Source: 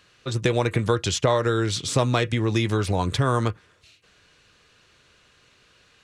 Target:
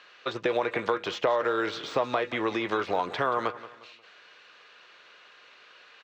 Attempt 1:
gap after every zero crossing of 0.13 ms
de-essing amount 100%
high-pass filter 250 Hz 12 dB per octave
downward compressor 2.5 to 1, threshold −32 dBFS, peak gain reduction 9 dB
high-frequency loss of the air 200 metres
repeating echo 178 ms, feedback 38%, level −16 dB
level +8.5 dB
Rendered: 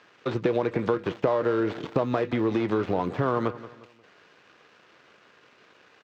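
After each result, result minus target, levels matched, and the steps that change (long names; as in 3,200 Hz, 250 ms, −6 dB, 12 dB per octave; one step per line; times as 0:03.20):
gap after every zero crossing: distortion +14 dB; 250 Hz band +5.5 dB
change: gap after every zero crossing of 0.026 ms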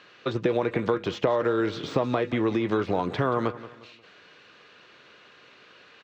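250 Hz band +5.5 dB
change: high-pass filter 610 Hz 12 dB per octave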